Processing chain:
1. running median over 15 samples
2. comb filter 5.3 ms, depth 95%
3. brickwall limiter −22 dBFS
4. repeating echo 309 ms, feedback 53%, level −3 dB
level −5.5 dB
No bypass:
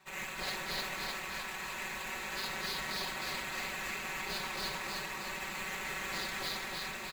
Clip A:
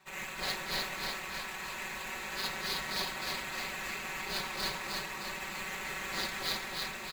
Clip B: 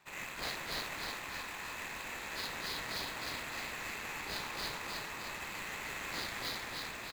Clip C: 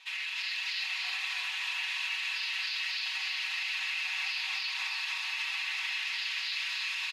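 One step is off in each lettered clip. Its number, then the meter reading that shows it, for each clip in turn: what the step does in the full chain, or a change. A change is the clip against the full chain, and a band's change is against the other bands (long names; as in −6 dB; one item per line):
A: 3, change in crest factor +5.0 dB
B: 2, change in integrated loudness −2.5 LU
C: 1, 1 kHz band −11.5 dB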